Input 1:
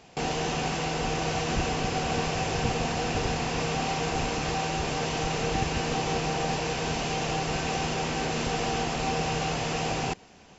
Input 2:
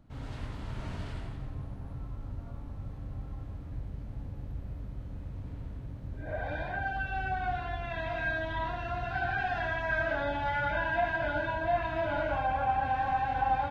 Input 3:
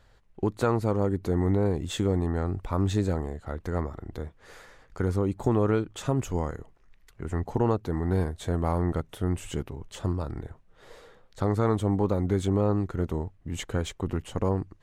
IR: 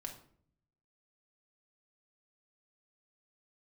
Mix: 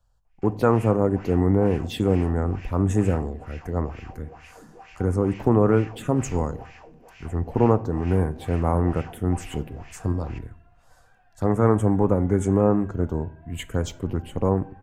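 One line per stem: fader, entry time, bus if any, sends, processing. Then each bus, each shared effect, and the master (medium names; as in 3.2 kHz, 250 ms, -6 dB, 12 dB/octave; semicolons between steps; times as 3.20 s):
-6.0 dB, 0.25 s, send -5 dB, wah-wah 2.2 Hz 200–2300 Hz, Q 2.6
-20.0 dB, 1.75 s, no send, none
+2.5 dB, 0.00 s, send -5.5 dB, touch-sensitive phaser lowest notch 340 Hz, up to 4.4 kHz, full sweep at -22 dBFS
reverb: on, RT60 0.55 s, pre-delay 4 ms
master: peaking EQ 3.8 kHz -8 dB 0.54 oct; three bands expanded up and down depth 40%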